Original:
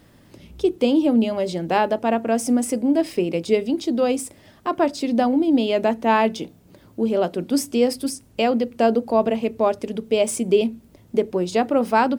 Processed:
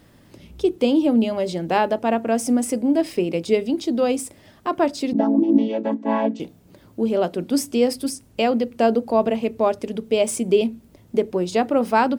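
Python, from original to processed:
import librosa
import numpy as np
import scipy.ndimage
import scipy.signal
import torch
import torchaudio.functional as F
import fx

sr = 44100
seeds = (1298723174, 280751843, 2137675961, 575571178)

y = fx.chord_vocoder(x, sr, chord='major triad', root=57, at=(5.13, 6.4))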